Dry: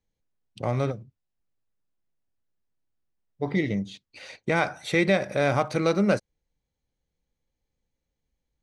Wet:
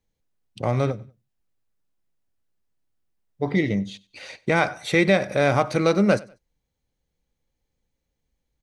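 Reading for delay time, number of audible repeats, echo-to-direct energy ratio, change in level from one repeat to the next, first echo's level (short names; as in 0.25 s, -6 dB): 96 ms, 2, -22.5 dB, -10.5 dB, -23.0 dB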